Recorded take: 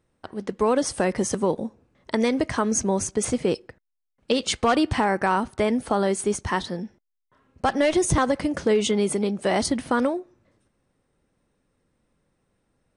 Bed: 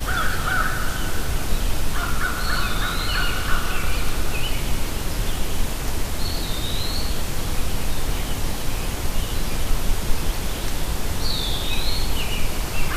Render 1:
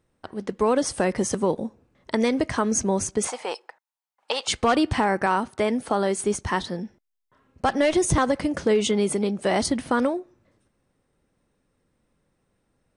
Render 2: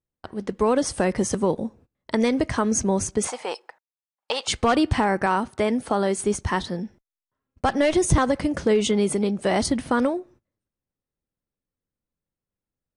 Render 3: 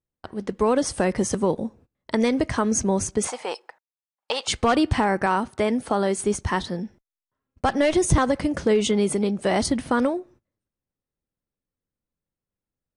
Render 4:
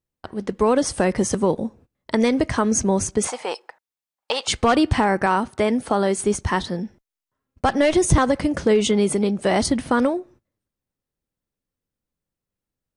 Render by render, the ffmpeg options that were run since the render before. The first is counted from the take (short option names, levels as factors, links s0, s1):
-filter_complex "[0:a]asettb=1/sr,asplit=3[s0][s1][s2];[s0]atrim=end=3.274[s3];[s1]atrim=start=3.27:end=4.48,asetpts=PTS-STARTPTS,afade=t=in:d=0.004:c=qsin,afade=t=out:st=1.206:d=0.004:c=qsin,highpass=f=860:t=q:w=4.3[s4];[s2]atrim=start=4.476[s5];[s3][s4]acrossfade=d=0.004:c1=hsin:c2=qsin[s6];[s6][s5]acrossfade=d=0.004:c1=qsin:c2=hsin,asettb=1/sr,asplit=3[s7][s8][s9];[s7]atrim=end=5.264[s10];[s8]atrim=start=5.26:end=6.18,asetpts=PTS-STARTPTS,afade=t=in:d=0.004:c=qsin,afade=t=out:st=0.916:d=0.004:c=qsin,highpass=f=170:p=1[s11];[s9]atrim=start=6.176[s12];[s10][s11]acrossfade=d=0.004:c1=hsin:c2=qsin[s13];[s13][s12]acrossfade=d=0.004:c1=qsin:c2=hsin"
-af "agate=range=0.0794:threshold=0.00316:ratio=16:detection=peak,lowshelf=f=130:g=6.5"
-af anull
-af "volume=1.33"